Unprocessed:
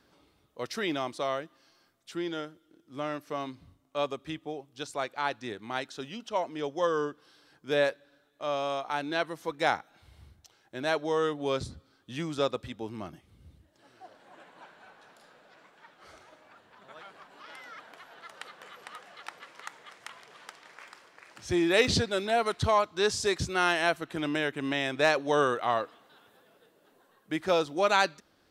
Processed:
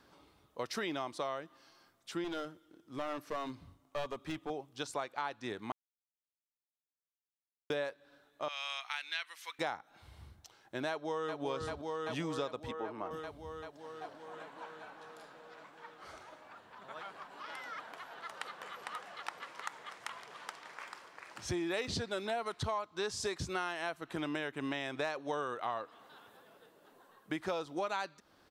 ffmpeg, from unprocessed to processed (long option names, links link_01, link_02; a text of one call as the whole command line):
ffmpeg -i in.wav -filter_complex "[0:a]asettb=1/sr,asplit=3[link_01][link_02][link_03];[link_01]atrim=end=2.244[link_04];[link_02]atrim=start=2.24:end=4.5,asetpts=PTS-STARTPTS,afade=type=in:duration=0.004:curve=qsin,afade=type=out:start_time=2.256:duration=0.004:curve=qsin,aeval=exprs='clip(val(0),-1,0.015)':channel_layout=same[link_05];[link_03]atrim=start=4.496[link_06];[link_04][link_05]acrossfade=duration=0.004:curve1=hsin:curve2=qsin[link_07];[link_07][link_06]acrossfade=duration=0.004:curve1=qsin:curve2=hsin,asettb=1/sr,asplit=3[link_08][link_09][link_10];[link_08]atrim=end=8.484[link_11];[link_09]atrim=start=8.48:end=9.59,asetpts=PTS-STARTPTS,afade=type=in:duration=0.004:curve=qsin,afade=type=out:start_time=1.106:duration=0.004:curve=qsin,highpass=frequency=2300:width_type=q:width=1.9[link_12];[link_10]atrim=start=9.586[link_13];[link_11][link_12]acrossfade=duration=0.004:curve1=hsin:curve2=qsin[link_14];[link_14][link_13]acrossfade=duration=0.004:curve1=qsin:curve2=hsin,asplit=2[link_15][link_16];[link_16]afade=type=in:start_time=10.89:duration=0.01,afade=type=out:start_time=11.42:duration=0.01,aecho=0:1:390|780|1170|1560|1950|2340|2730|3120|3510|3900|4290|4680:0.421697|0.316272|0.237204|0.177903|0.133427|0.100071|0.0750529|0.0562897|0.0422173|0.0316629|0.0237472|0.0178104[link_17];[link_15][link_17]amix=inputs=2:normalize=0,asettb=1/sr,asplit=3[link_18][link_19][link_20];[link_18]atrim=end=12.714[link_21];[link_19]atrim=start=12.71:end=13.11,asetpts=PTS-STARTPTS,afade=type=in:duration=0.004:curve=qsin,afade=type=out:start_time=0.396:duration=0.004:curve=qsin,acrossover=split=330 2200:gain=0.2 1 0.2[link_22][link_23][link_24];[link_22][link_23][link_24]amix=inputs=3:normalize=0[link_25];[link_20]atrim=start=13.106[link_26];[link_21][link_25]acrossfade=duration=0.004:curve1=hsin:curve2=qsin[link_27];[link_27][link_26]acrossfade=duration=0.004:curve1=qsin:curve2=hsin,asplit=3[link_28][link_29][link_30];[link_28]atrim=end=5.72,asetpts=PTS-STARTPTS,afade=type=out:start_time=5.716:duration=0.004:curve=hsin[link_31];[link_29]atrim=start=5.72:end=7.7,asetpts=PTS-STARTPTS,volume=0[link_32];[link_30]atrim=start=7.7,asetpts=PTS-STARTPTS,afade=type=in:duration=0.004:curve=hsin[link_33];[link_31][link_32][link_33]concat=n=3:v=0:a=1,equalizer=frequency=1000:width=1.5:gain=4.5,acompressor=threshold=-34dB:ratio=6" out.wav